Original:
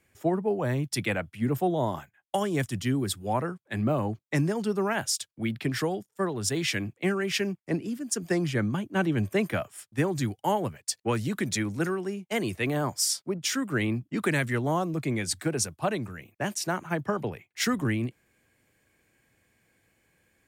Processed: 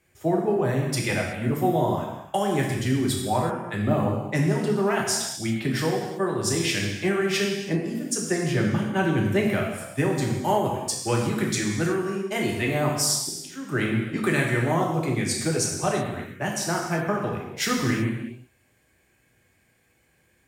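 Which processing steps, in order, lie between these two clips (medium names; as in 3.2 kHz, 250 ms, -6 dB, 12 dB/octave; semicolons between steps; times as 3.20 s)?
13.05–13.69 s: slow attack 436 ms; gated-style reverb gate 400 ms falling, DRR -1.5 dB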